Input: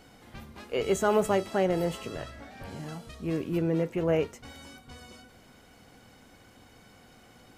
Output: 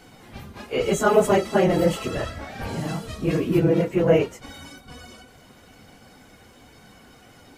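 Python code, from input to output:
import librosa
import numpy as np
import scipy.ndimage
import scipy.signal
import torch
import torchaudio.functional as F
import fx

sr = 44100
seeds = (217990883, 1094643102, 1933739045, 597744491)

y = fx.phase_scramble(x, sr, seeds[0], window_ms=50)
y = fx.rider(y, sr, range_db=4, speed_s=2.0)
y = y * librosa.db_to_amplitude(8.0)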